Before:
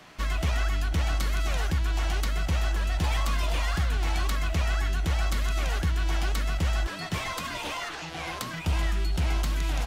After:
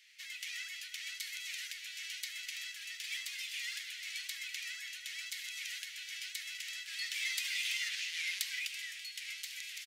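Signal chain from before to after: level rider gain up to 9 dB; delay 333 ms -10.5 dB; compression, threshold -19 dBFS, peak gain reduction 7.5 dB; elliptic high-pass 2 kHz, stop band 60 dB; trim -7 dB

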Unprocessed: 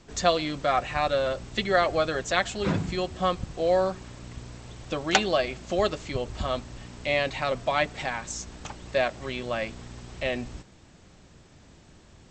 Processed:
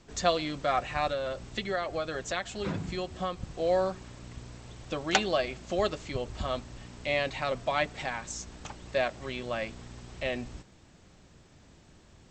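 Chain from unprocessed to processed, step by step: 1.10–3.44 s: compression 2.5:1, threshold -27 dBFS, peak gain reduction 7 dB; trim -3.5 dB

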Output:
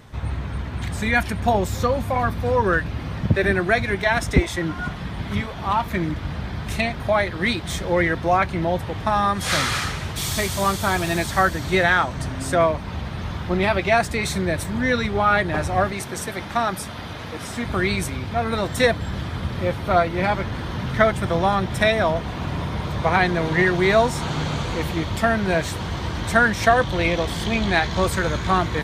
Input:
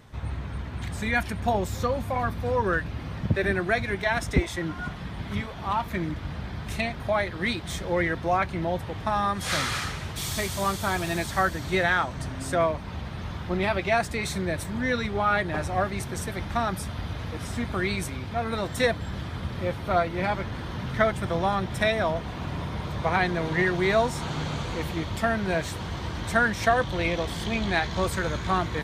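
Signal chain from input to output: 15.92–17.66 s: high-pass 250 Hz 6 dB/octave; trim +5.5 dB

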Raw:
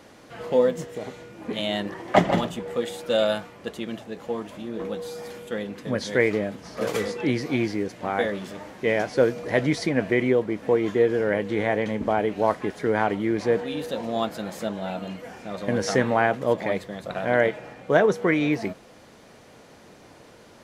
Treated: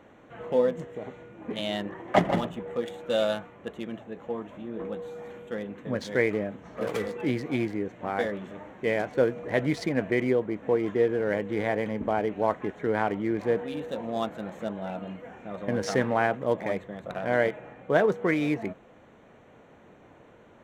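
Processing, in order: local Wiener filter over 9 samples; trim -3.5 dB

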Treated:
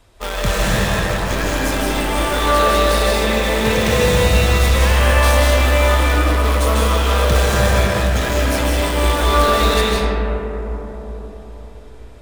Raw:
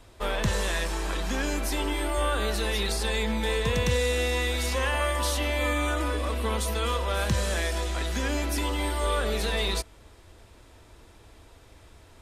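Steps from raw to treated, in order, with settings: peaking EQ 300 Hz -2.5 dB; in parallel at -3 dB: bit crusher 4-bit; on the sum: reverberation RT60 4.3 s, pre-delay 115 ms, DRR -6 dB

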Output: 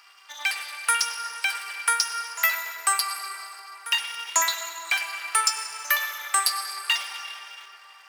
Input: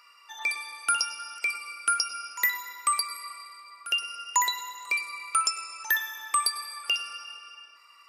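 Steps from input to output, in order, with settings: cycle switcher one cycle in 3, muted; high-pass 1 kHz 12 dB/octave; plate-style reverb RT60 4.2 s, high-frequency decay 0.45×, DRR 8 dB; trim +5 dB

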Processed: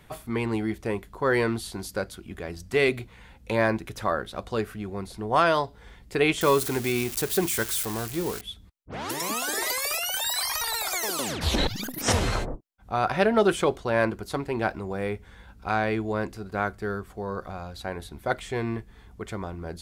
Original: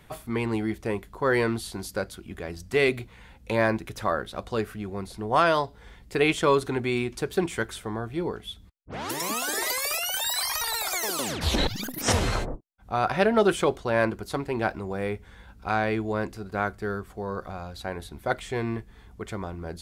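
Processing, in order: 6.41–8.41 s: zero-crossing glitches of -22 dBFS

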